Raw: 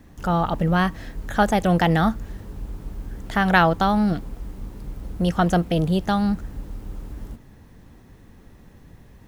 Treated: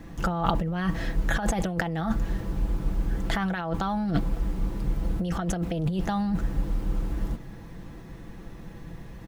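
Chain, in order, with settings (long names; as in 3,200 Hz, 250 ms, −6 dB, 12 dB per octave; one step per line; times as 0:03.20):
high-shelf EQ 6,300 Hz −7 dB
comb filter 6 ms, depth 49%
compressor whose output falls as the input rises −25 dBFS, ratio −1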